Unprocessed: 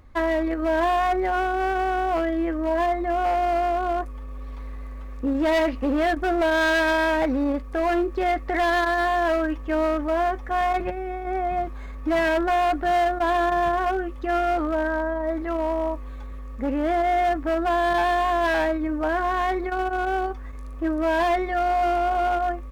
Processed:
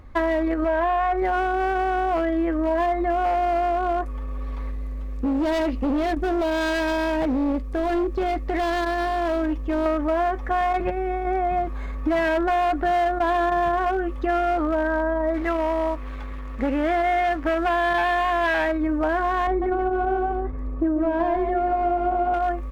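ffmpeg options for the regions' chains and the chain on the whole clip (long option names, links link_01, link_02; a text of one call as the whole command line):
ffmpeg -i in.wav -filter_complex "[0:a]asettb=1/sr,asplit=3[link_01][link_02][link_03];[link_01]atrim=end=0.644[link_04];[link_02]atrim=start=0.64:end=1.22,asetpts=PTS-STARTPTS,afade=type=in:duration=0.004:curve=qsin,afade=type=out:start_time=0.576:duration=0.004:curve=qsin,acrossover=split=2800[link_05][link_06];[link_06]acompressor=threshold=-54dB:ratio=4:attack=1:release=60[link_07];[link_05][link_07]amix=inputs=2:normalize=0,equalizer=frequency=260:width_type=o:width=0.54:gain=-12[link_08];[link_03]atrim=start=1.216[link_09];[link_04][link_08]acrossfade=duration=0.004:curve1=hsin:curve2=qsin[link_10];[link_10][link_09]acrossfade=duration=0.004:curve1=qsin:curve2=hsin,asettb=1/sr,asplit=3[link_11][link_12][link_13];[link_11]atrim=end=4.714[link_14];[link_12]atrim=start=4.71:end=9.86,asetpts=PTS-STARTPTS,afade=type=in:duration=0.004:curve=qsin,afade=type=out:start_time=5.146:duration=0.004:curve=qsin,equalizer=frequency=1300:width_type=o:width=2.2:gain=-9,asoftclip=type=hard:threshold=-24dB[link_15];[link_13]atrim=start=9.856[link_16];[link_14][link_15]acrossfade=duration=0.004:curve1=hsin:curve2=qsin[link_17];[link_17][link_16]acrossfade=duration=0.004:curve1=qsin:curve2=hsin,asettb=1/sr,asplit=3[link_18][link_19][link_20];[link_18]atrim=end=15.344[link_21];[link_19]atrim=start=15.34:end=18.72,asetpts=PTS-STARTPTS,afade=type=in:duration=0.004:curve=qsin,afade=type=out:start_time=3.376:duration=0.004:curve=qsin,equalizer=frequency=2200:width_type=o:width=1.8:gain=7,aeval=exprs='sgn(val(0))*max(abs(val(0))-0.00631,0)':channel_layout=same[link_22];[link_20]atrim=start=18.716[link_23];[link_21][link_22]acrossfade=duration=0.004:curve1=hsin:curve2=qsin[link_24];[link_24][link_23]acrossfade=duration=0.004:curve1=qsin:curve2=hsin,asettb=1/sr,asplit=3[link_25][link_26][link_27];[link_25]atrim=end=19.474[link_28];[link_26]atrim=start=19.47:end=22.34,asetpts=PTS-STARTPTS,afade=type=in:duration=0.004:curve=qsin,afade=type=out:start_time=2.866:duration=0.004:curve=qsin,lowpass=frequency=1600:poles=1,tiltshelf=frequency=720:gain=5.5,aecho=1:1:145:0.501,atrim=end_sample=126567[link_29];[link_27]atrim=start=22.336[link_30];[link_28][link_29]acrossfade=duration=0.004:curve1=hsin:curve2=qsin[link_31];[link_31][link_30]acrossfade=duration=0.004:curve1=qsin:curve2=hsin,highshelf=frequency=3700:gain=-6,acompressor=threshold=-25dB:ratio=6,volume=5.5dB" out.wav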